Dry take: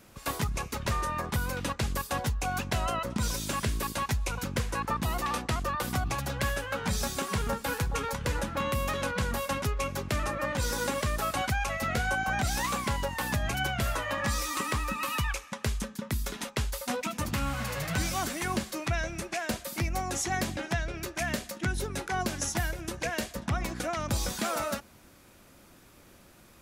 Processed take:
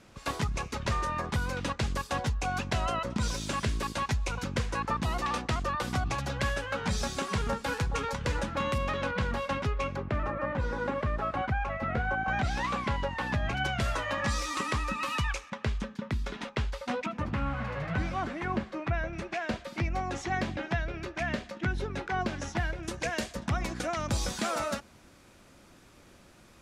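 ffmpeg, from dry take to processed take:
-af "asetnsamples=n=441:p=0,asendcmd='8.78 lowpass f 3700;9.96 lowpass f 1700;12.28 lowpass f 3300;13.65 lowpass f 6500;15.5 lowpass f 3400;17.06 lowpass f 2000;19.13 lowpass f 3300;22.83 lowpass f 8400',lowpass=6.6k"

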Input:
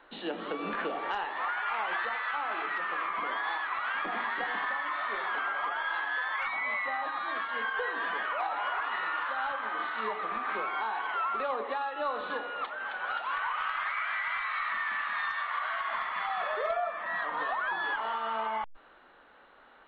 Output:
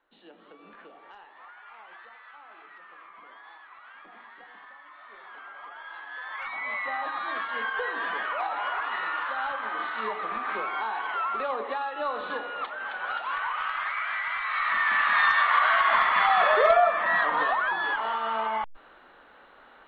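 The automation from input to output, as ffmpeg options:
-af "volume=11.5dB,afade=t=in:st=4.97:d=1.1:silence=0.421697,afade=t=in:st=6.07:d=0.93:silence=0.281838,afade=t=in:st=14.41:d=0.87:silence=0.334965,afade=t=out:st=16.81:d=0.95:silence=0.421697"

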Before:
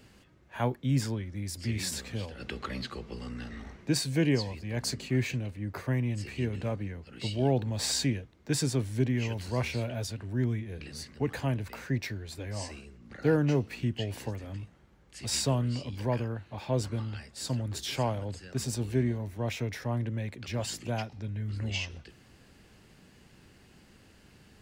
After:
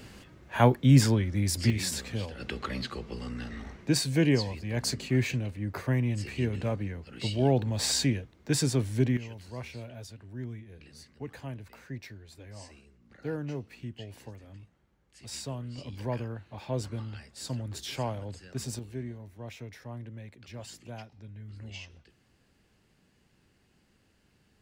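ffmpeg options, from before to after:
-af "asetnsamples=n=441:p=0,asendcmd='1.7 volume volume 2dB;9.17 volume volume -9.5dB;15.78 volume volume -3dB;18.79 volume volume -10dB',volume=8.5dB"

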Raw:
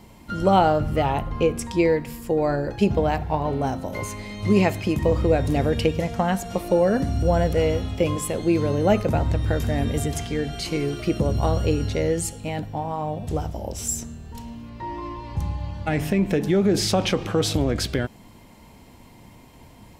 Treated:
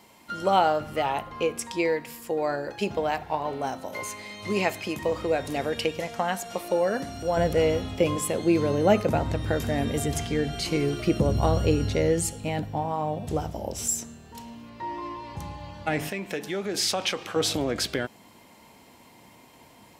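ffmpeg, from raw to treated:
-af "asetnsamples=n=441:p=0,asendcmd='7.37 highpass f 180;10.08 highpass f 61;12.86 highpass f 140;13.87 highpass f 350;16.09 highpass f 1200;17.36 highpass f 410',highpass=f=730:p=1"

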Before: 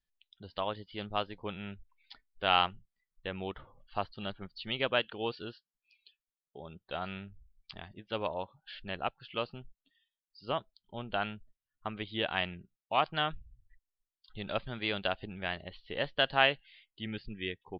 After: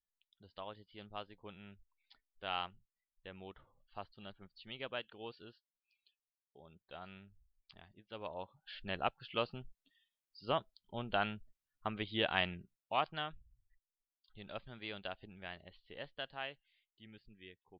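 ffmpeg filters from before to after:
-af "volume=-1dB,afade=t=in:st=8.16:d=0.81:silence=0.266073,afade=t=out:st=12.51:d=0.81:silence=0.298538,afade=t=out:st=15.77:d=0.62:silence=0.473151"

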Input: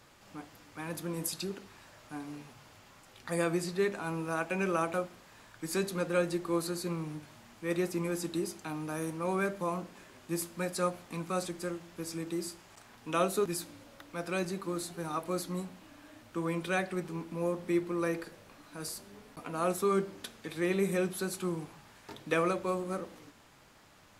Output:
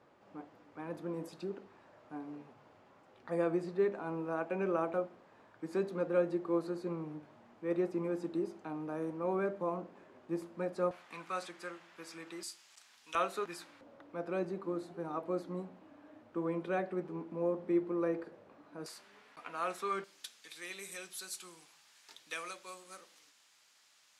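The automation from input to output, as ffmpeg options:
-af "asetnsamples=n=441:p=0,asendcmd='10.91 bandpass f 1700;12.43 bandpass f 5100;13.15 bandpass f 1500;13.81 bandpass f 470;18.86 bandpass f 1900;20.04 bandpass f 5900',bandpass=f=480:t=q:w=0.76:csg=0"

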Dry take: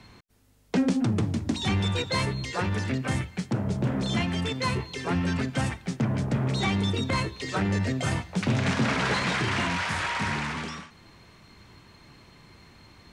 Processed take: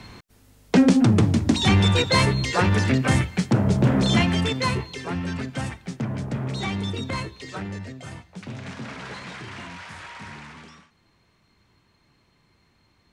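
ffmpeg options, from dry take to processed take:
-af "volume=8dB,afade=t=out:st=4.09:d=1.02:silence=0.316228,afade=t=out:st=7.12:d=0.84:silence=0.354813"

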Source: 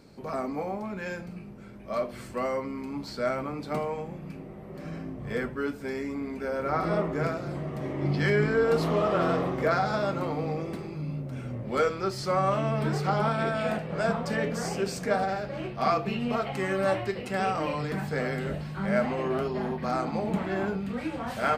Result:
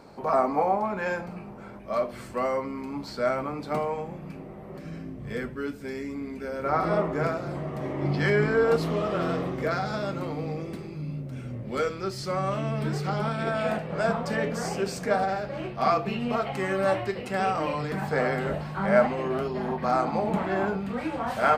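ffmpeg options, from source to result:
-af "asetnsamples=n=441:p=0,asendcmd='1.79 equalizer g 4;4.79 equalizer g -5;6.64 equalizer g 4;8.76 equalizer g -4.5;13.47 equalizer g 2.5;18.02 equalizer g 9.5;19.07 equalizer g 0.5;19.68 equalizer g 6.5',equalizer=f=880:t=o:w=1.7:g=13"

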